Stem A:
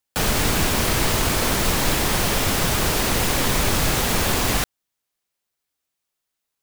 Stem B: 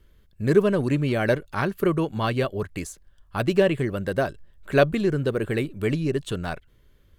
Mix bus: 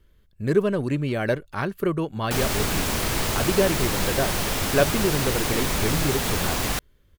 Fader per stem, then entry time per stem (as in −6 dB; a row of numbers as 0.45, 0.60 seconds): −4.5, −2.0 decibels; 2.15, 0.00 seconds